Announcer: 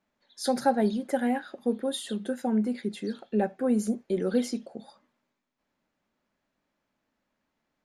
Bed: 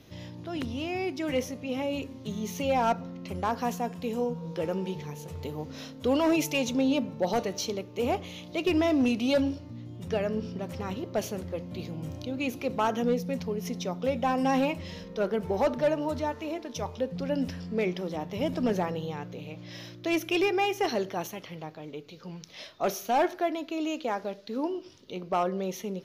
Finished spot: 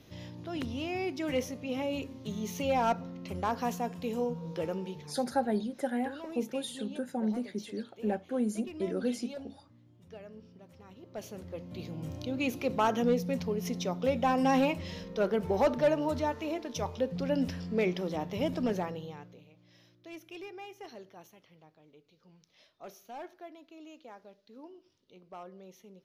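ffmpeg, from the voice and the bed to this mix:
-filter_complex "[0:a]adelay=4700,volume=0.531[s0];[1:a]volume=6.31,afade=t=out:st=4.55:d=0.81:silence=0.149624,afade=t=in:st=10.94:d=1.43:silence=0.11885,afade=t=out:st=18.25:d=1.25:silence=0.11885[s1];[s0][s1]amix=inputs=2:normalize=0"

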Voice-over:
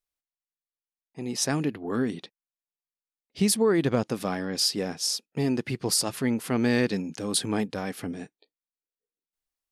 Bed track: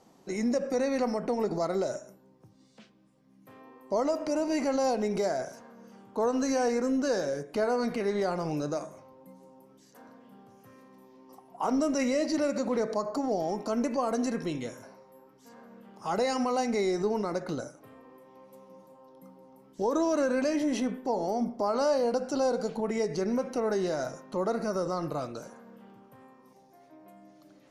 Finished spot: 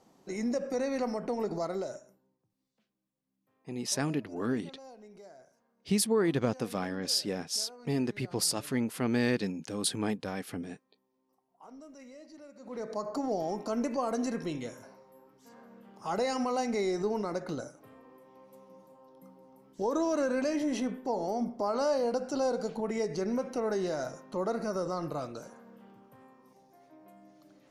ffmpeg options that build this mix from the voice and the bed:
-filter_complex "[0:a]adelay=2500,volume=0.596[s0];[1:a]volume=7.08,afade=t=out:st=1.59:d=0.85:silence=0.105925,afade=t=in:st=12.59:d=0.54:silence=0.0944061[s1];[s0][s1]amix=inputs=2:normalize=0"

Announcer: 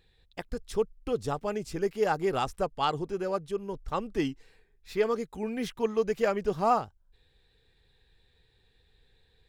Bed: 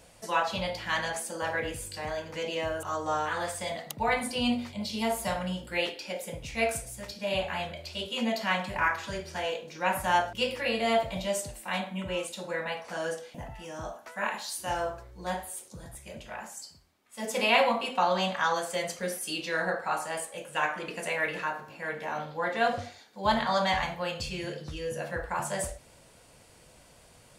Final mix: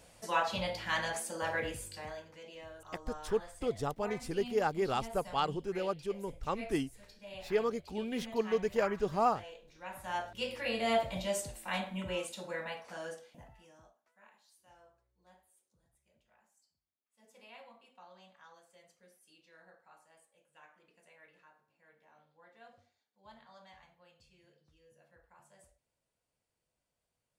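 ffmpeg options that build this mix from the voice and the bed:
-filter_complex "[0:a]adelay=2550,volume=0.631[s0];[1:a]volume=3.16,afade=t=out:st=1.64:d=0.73:silence=0.199526,afade=t=in:st=9.91:d=1.02:silence=0.211349,afade=t=out:st=12.1:d=1.85:silence=0.0446684[s1];[s0][s1]amix=inputs=2:normalize=0"

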